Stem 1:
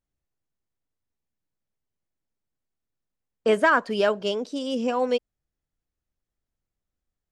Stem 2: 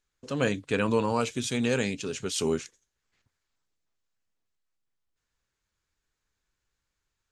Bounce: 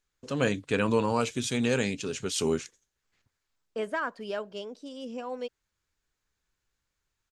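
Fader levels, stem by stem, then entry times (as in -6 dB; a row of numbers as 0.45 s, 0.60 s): -12.0 dB, 0.0 dB; 0.30 s, 0.00 s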